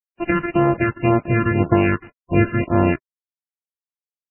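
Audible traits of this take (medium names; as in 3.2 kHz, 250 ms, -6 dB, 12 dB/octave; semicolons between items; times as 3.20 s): a buzz of ramps at a fixed pitch in blocks of 128 samples; phasing stages 8, 1.9 Hz, lowest notch 690–2600 Hz; a quantiser's noise floor 8-bit, dither none; MP3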